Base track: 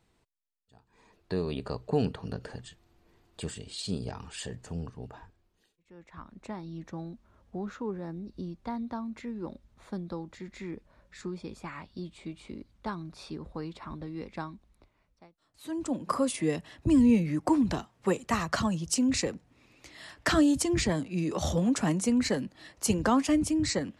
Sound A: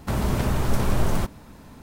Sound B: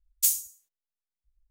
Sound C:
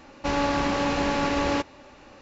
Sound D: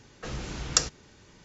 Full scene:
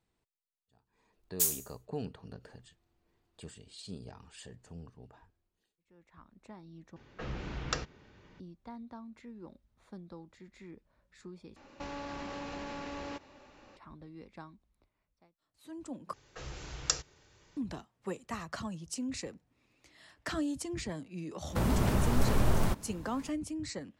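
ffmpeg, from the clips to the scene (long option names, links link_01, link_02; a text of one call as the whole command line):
ffmpeg -i bed.wav -i cue0.wav -i cue1.wav -i cue2.wav -i cue3.wav -filter_complex "[4:a]asplit=2[link_01][link_02];[0:a]volume=-11dB[link_03];[2:a]acrusher=bits=3:mode=log:mix=0:aa=0.000001[link_04];[link_01]lowpass=2900[link_05];[3:a]acompressor=threshold=-29dB:ratio=6:attack=3.2:release=140:knee=1:detection=peak[link_06];[link_02]equalizer=frequency=220:width=2.2:gain=-11.5[link_07];[link_03]asplit=4[link_08][link_09][link_10][link_11];[link_08]atrim=end=6.964[link_12];[link_05]atrim=end=1.44,asetpts=PTS-STARTPTS,volume=-3dB[link_13];[link_09]atrim=start=8.396:end=11.564[link_14];[link_06]atrim=end=2.21,asetpts=PTS-STARTPTS,volume=-8.5dB[link_15];[link_10]atrim=start=13.766:end=16.134[link_16];[link_07]atrim=end=1.44,asetpts=PTS-STARTPTS,volume=-7dB[link_17];[link_11]atrim=start=17.566[link_18];[link_04]atrim=end=1.5,asetpts=PTS-STARTPTS,volume=-5.5dB,afade=type=in:duration=0.004:curve=hsin,afade=type=out:start_time=1.496:duration=0.004:curve=hsin,adelay=1170[link_19];[1:a]atrim=end=1.82,asetpts=PTS-STARTPTS,volume=-5dB,afade=type=in:duration=0.004:curve=hsin,afade=type=out:start_time=1.816:duration=0.004:curve=hsin,adelay=947268S[link_20];[link_12][link_13]acrossfade=duration=0.004:curve1=hsin:curve2=hsin[link_21];[link_21][link_14]acrossfade=duration=0.004:curve1=hsin:curve2=hsin[link_22];[link_22][link_15]acrossfade=duration=0.004:curve1=hsin:curve2=hsin[link_23];[link_23][link_16]acrossfade=duration=0.004:curve1=hsin:curve2=hsin[link_24];[link_24][link_17]acrossfade=duration=0.004:curve1=hsin:curve2=hsin[link_25];[link_25][link_18]acrossfade=duration=0.004:curve1=hsin:curve2=hsin[link_26];[link_26][link_19][link_20]amix=inputs=3:normalize=0" out.wav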